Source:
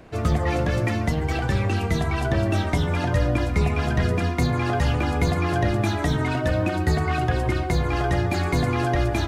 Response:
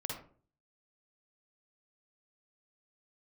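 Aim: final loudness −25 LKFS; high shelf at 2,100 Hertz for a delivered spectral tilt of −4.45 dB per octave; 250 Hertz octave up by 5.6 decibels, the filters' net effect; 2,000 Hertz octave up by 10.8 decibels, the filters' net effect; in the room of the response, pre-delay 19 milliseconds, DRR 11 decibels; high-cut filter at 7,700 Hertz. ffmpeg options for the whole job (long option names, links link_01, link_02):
-filter_complex "[0:a]lowpass=7700,equalizer=frequency=250:width_type=o:gain=7.5,equalizer=frequency=2000:width_type=o:gain=8,highshelf=frequency=2100:gain=9,asplit=2[link_01][link_02];[1:a]atrim=start_sample=2205,adelay=19[link_03];[link_02][link_03]afir=irnorm=-1:irlink=0,volume=-12dB[link_04];[link_01][link_04]amix=inputs=2:normalize=0,volume=-6.5dB"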